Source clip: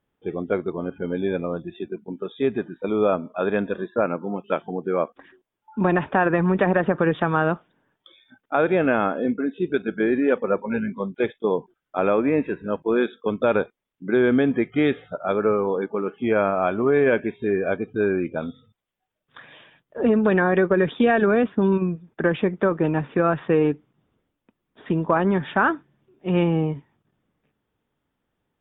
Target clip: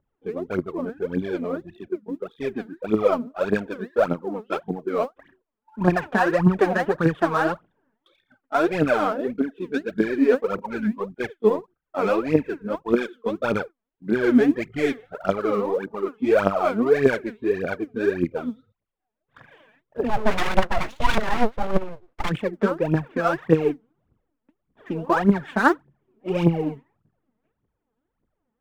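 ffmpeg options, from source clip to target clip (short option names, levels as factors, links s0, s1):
-filter_complex "[0:a]adynamicsmooth=sensitivity=3:basefreq=1800,aphaser=in_gain=1:out_gain=1:delay=4.8:decay=0.77:speed=1.7:type=triangular,asplit=3[s0][s1][s2];[s0]afade=t=out:st=20.08:d=0.02[s3];[s1]aeval=exprs='abs(val(0))':c=same,afade=t=in:st=20.08:d=0.02,afade=t=out:st=22.29:d=0.02[s4];[s2]afade=t=in:st=22.29:d=0.02[s5];[s3][s4][s5]amix=inputs=3:normalize=0,volume=0.631"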